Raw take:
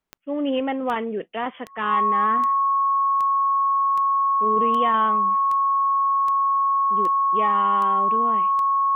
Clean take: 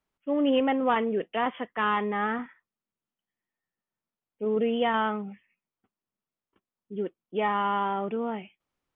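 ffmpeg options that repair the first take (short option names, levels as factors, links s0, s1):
-af "adeclick=t=4,bandreject=f=1100:w=30"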